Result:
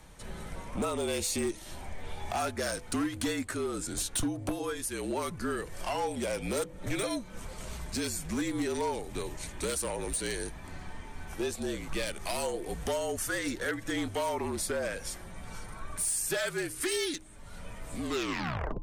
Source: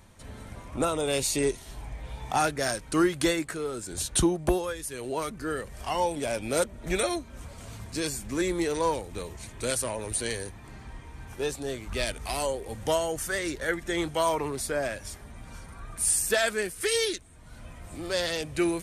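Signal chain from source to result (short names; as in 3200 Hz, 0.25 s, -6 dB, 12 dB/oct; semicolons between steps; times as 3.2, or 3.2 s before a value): tape stop at the end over 0.83 s; compressor 2.5:1, threshold -33 dBFS, peak gain reduction 10 dB; overloaded stage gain 28 dB; de-hum 181.5 Hz, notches 6; frequency shift -49 Hz; gain +2.5 dB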